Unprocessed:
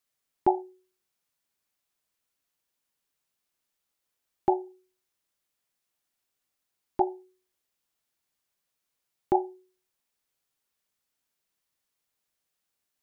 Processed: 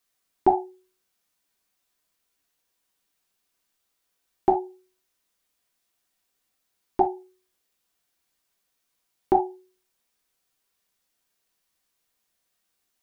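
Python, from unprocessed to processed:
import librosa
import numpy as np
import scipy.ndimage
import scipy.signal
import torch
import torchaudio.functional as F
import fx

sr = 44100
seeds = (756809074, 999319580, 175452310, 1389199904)

y = fx.rev_gated(x, sr, seeds[0], gate_ms=90, shape='falling', drr_db=3.5)
y = F.gain(torch.from_numpy(y), 4.0).numpy()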